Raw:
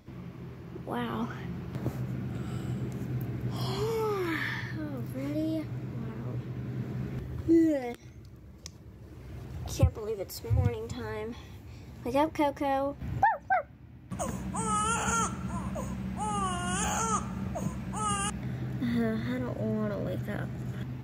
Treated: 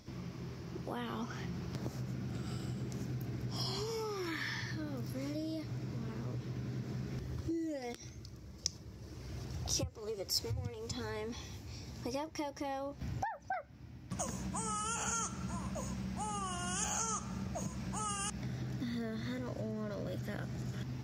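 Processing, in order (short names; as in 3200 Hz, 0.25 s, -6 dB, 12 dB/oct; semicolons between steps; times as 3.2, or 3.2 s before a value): compressor 6:1, threshold -35 dBFS, peak gain reduction 16.5 dB; bell 5400 Hz +14 dB 0.78 oct; gain -1.5 dB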